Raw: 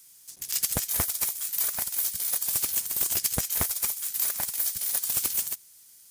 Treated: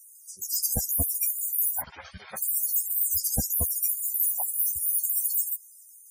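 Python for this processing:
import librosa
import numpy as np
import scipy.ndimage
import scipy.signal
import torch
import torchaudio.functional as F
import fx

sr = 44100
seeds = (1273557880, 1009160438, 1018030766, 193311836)

p1 = fx.lowpass(x, sr, hz=2100.0, slope=12, at=(1.8, 2.37))
p2 = fx.quant_float(p1, sr, bits=2)
p3 = p1 + F.gain(torch.from_numpy(p2), -5.0).numpy()
p4 = 10.0 ** (-17.0 / 20.0) * np.tanh(p3 / 10.0 ** (-17.0 / 20.0))
p5 = fx.spec_topn(p4, sr, count=64)
p6 = fx.ensemble(p5, sr)
y = F.gain(torch.from_numpy(p6), 6.5).numpy()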